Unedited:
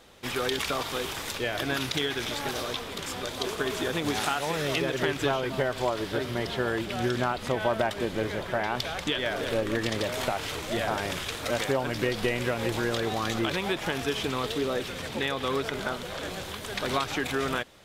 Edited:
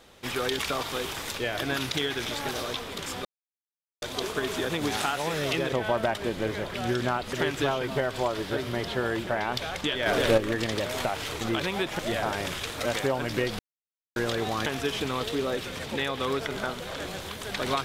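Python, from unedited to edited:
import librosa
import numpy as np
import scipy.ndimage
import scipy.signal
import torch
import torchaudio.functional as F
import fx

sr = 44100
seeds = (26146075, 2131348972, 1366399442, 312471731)

y = fx.edit(x, sr, fx.insert_silence(at_s=3.25, length_s=0.77),
    fx.swap(start_s=4.95, length_s=1.94, other_s=7.48, other_length_s=1.02),
    fx.clip_gain(start_s=9.29, length_s=0.32, db=6.5),
    fx.silence(start_s=12.24, length_s=0.57),
    fx.move(start_s=13.31, length_s=0.58, to_s=10.64), tone=tone)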